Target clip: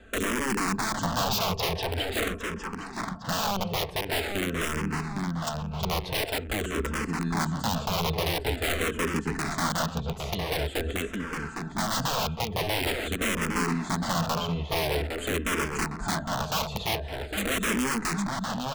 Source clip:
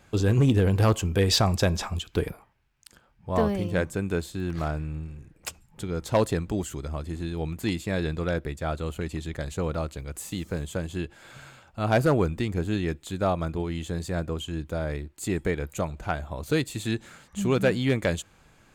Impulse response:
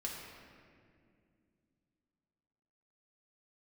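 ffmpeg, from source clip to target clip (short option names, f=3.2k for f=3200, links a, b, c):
-filter_complex "[0:a]lowpass=11k,aemphasis=mode=reproduction:type=75fm,bandreject=f=2.2k:w=6.6,aecho=1:1:4.5:0.72,asplit=2[a][b];[b]acompressor=threshold=-31dB:ratio=12,volume=3dB[c];[a][c]amix=inputs=2:normalize=0,alimiter=limit=-13dB:level=0:latency=1:release=21,acrossover=split=300|3000[d][e][f];[d]acompressor=threshold=-28dB:ratio=3[g];[g][e][f]amix=inputs=3:normalize=0,aeval=exprs='(mod(9.44*val(0)+1,2)-1)/9.44':c=same,asplit=2[h][i];[i]adelay=809,lowpass=f=3.9k:p=1,volume=-3.5dB,asplit=2[j][k];[k]adelay=809,lowpass=f=3.9k:p=1,volume=0.45,asplit=2[l][m];[m]adelay=809,lowpass=f=3.9k:p=1,volume=0.45,asplit=2[n][o];[o]adelay=809,lowpass=f=3.9k:p=1,volume=0.45,asplit=2[p][q];[q]adelay=809,lowpass=f=3.9k:p=1,volume=0.45,asplit=2[r][s];[s]adelay=809,lowpass=f=3.9k:p=1,volume=0.45[t];[h][j][l][n][p][r][t]amix=inputs=7:normalize=0,asplit=2[u][v];[v]afreqshift=-0.46[w];[u][w]amix=inputs=2:normalize=1"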